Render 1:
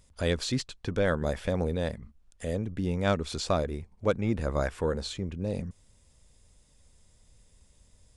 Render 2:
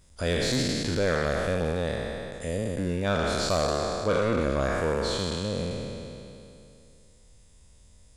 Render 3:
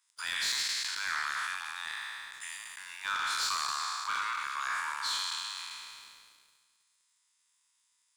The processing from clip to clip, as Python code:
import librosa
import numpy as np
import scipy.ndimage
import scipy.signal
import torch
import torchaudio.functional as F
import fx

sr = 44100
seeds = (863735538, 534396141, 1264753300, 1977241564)

y1 = fx.spec_trails(x, sr, decay_s=2.7)
y1 = 10.0 ** (-16.5 / 20.0) * np.tanh(y1 / 10.0 ** (-16.5 / 20.0))
y2 = scipy.signal.sosfilt(scipy.signal.butter(12, 930.0, 'highpass', fs=sr, output='sos'), y1)
y2 = fx.leveller(y2, sr, passes=2)
y2 = y2 * librosa.db_to_amplitude(-6.0)